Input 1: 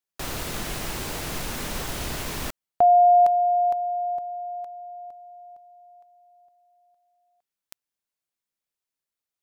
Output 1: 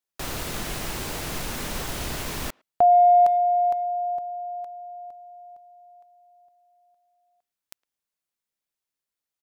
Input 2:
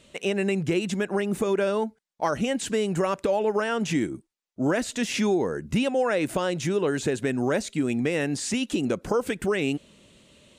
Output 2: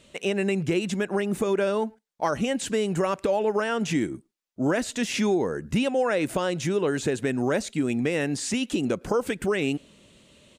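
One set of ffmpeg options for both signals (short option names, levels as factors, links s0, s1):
-filter_complex "[0:a]asplit=2[s0][s1];[s1]adelay=110,highpass=300,lowpass=3400,asoftclip=type=hard:threshold=0.0944,volume=0.0355[s2];[s0][s2]amix=inputs=2:normalize=0"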